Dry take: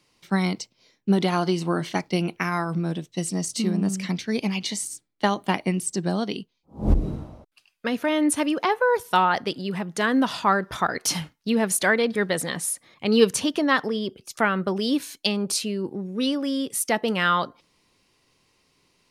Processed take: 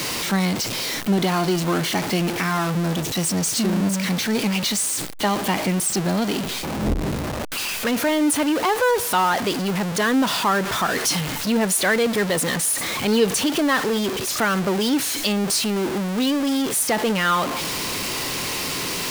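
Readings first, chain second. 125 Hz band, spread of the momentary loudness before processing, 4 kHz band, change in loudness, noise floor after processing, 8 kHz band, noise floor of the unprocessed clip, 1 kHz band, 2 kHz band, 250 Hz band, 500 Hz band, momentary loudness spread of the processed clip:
+3.5 dB, 9 LU, +6.5 dB, +3.5 dB, −27 dBFS, +7.0 dB, −70 dBFS, +2.0 dB, +3.0 dB, +3.0 dB, +2.5 dB, 5 LU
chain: converter with a step at zero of −20 dBFS
low-shelf EQ 78 Hz −9 dB
in parallel at −2.5 dB: brickwall limiter −13.5 dBFS, peak gain reduction 9 dB
on the sum: level −5 dB

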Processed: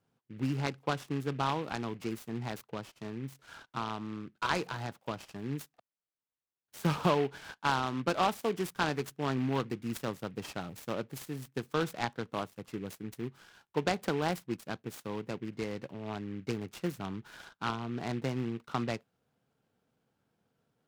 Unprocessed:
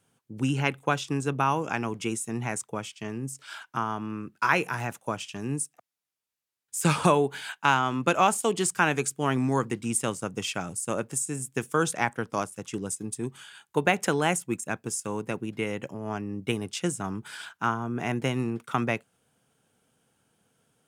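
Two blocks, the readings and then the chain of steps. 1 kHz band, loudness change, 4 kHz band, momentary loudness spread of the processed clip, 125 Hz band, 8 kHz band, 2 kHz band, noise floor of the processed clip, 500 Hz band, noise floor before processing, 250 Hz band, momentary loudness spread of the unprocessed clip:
−7.0 dB, −7.0 dB, −5.5 dB, 11 LU, −5.5 dB, −17.5 dB, −9.5 dB, below −85 dBFS, −6.0 dB, −82 dBFS, −5.5 dB, 11 LU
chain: high-shelf EQ 2,600 Hz −11.5 dB
short delay modulated by noise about 1,900 Hz, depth 0.054 ms
level −5.5 dB

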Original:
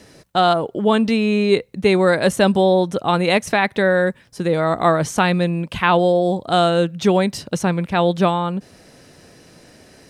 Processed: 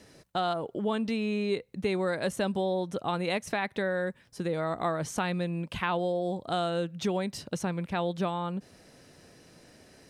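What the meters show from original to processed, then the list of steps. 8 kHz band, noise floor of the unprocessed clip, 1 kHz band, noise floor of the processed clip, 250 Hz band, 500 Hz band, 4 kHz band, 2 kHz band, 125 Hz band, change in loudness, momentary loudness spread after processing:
−11.0 dB, −49 dBFS, −13.5 dB, −59 dBFS, −13.0 dB, −13.5 dB, −13.0 dB, −13.5 dB, −12.5 dB, −13.5 dB, 4 LU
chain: downward compressor 2 to 1, threshold −21 dBFS, peak gain reduction 6.5 dB
level −8.5 dB

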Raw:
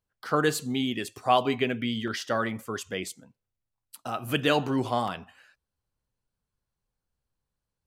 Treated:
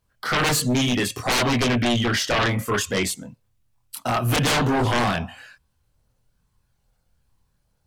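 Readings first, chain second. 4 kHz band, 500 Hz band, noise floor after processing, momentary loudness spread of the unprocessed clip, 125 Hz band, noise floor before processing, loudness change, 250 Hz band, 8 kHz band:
+9.0 dB, +3.0 dB, −70 dBFS, 11 LU, +11.5 dB, below −85 dBFS, +6.5 dB, +6.0 dB, +13.0 dB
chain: multi-voice chorus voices 6, 0.3 Hz, delay 25 ms, depth 1 ms
sine wavefolder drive 17 dB, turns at −12 dBFS
level −5 dB

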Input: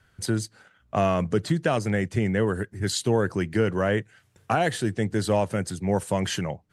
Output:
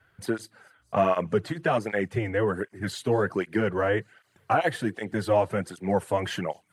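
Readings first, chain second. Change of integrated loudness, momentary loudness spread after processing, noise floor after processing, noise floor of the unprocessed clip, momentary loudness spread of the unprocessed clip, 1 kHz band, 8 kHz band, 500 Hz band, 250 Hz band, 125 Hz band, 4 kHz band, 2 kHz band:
−1.5 dB, 8 LU, −67 dBFS, −64 dBFS, 5 LU, +1.0 dB, −10.5 dB, 0.0 dB, −3.5 dB, −6.0 dB, −5.5 dB, 0.0 dB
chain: parametric band 6,700 Hz −14 dB 2 octaves
de-essing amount 90%
low-shelf EQ 280 Hz −11.5 dB
delay with a high-pass on its return 225 ms, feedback 75%, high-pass 4,700 Hz, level −23 dB
through-zero flanger with one copy inverted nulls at 1.3 Hz, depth 5.8 ms
level +6.5 dB

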